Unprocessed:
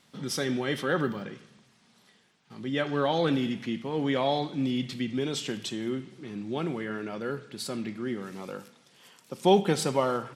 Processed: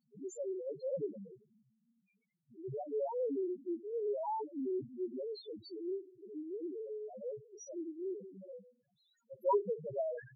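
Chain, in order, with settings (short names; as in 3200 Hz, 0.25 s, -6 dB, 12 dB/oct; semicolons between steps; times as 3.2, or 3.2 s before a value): formant shift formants +4 st; loudest bins only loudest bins 1; gain -1.5 dB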